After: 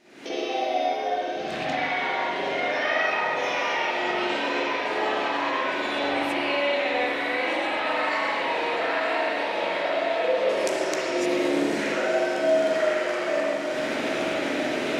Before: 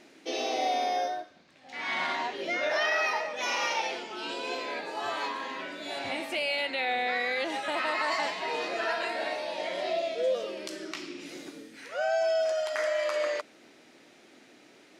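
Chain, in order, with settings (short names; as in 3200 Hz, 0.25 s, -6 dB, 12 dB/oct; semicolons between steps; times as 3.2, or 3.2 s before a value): recorder AGC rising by 69 dB/s; 10.49–11.26 resonant high shelf 4800 Hz +9.5 dB, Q 1.5; on a send: diffused feedback echo 0.972 s, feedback 73%, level -6.5 dB; on the sum: spring tank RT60 1.5 s, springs 42/56 ms, chirp 70 ms, DRR -8 dB; gain -6 dB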